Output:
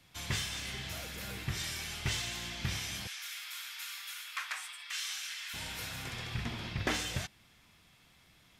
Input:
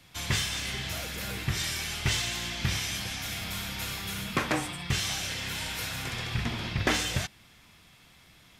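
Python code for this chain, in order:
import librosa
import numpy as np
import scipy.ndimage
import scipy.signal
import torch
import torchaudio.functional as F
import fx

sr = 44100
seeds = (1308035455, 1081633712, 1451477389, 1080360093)

y = fx.highpass(x, sr, hz=1200.0, slope=24, at=(3.07, 5.54))
y = y * 10.0 ** (-6.5 / 20.0)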